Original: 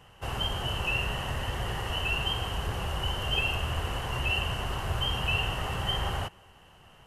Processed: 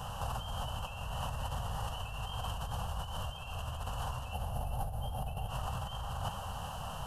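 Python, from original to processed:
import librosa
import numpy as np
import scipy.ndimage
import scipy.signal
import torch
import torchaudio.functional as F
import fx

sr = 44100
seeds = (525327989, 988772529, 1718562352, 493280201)

y = fx.spec_box(x, sr, start_s=4.33, length_s=1.16, low_hz=890.0, high_hz=9200.0, gain_db=-12)
y = fx.over_compress(y, sr, threshold_db=-42.0, ratio=-1.0)
y = fx.fixed_phaser(y, sr, hz=870.0, stages=4)
y = y + 10.0 ** (-9.0 / 20.0) * np.pad(y, (int(394 * sr / 1000.0), 0))[:len(y)]
y = y * 10.0 ** (5.5 / 20.0)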